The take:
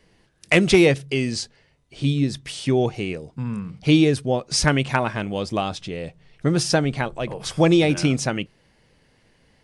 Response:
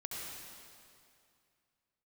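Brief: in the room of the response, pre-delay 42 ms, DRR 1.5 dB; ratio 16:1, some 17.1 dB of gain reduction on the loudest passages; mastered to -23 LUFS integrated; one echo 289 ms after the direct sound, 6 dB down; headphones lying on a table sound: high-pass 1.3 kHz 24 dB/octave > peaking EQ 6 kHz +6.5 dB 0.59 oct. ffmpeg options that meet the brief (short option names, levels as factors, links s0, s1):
-filter_complex "[0:a]acompressor=threshold=0.0398:ratio=16,aecho=1:1:289:0.501,asplit=2[s0][s1];[1:a]atrim=start_sample=2205,adelay=42[s2];[s1][s2]afir=irnorm=-1:irlink=0,volume=0.794[s3];[s0][s3]amix=inputs=2:normalize=0,highpass=f=1300:w=0.5412,highpass=f=1300:w=1.3066,equalizer=f=6000:t=o:w=0.59:g=6.5,volume=2.99"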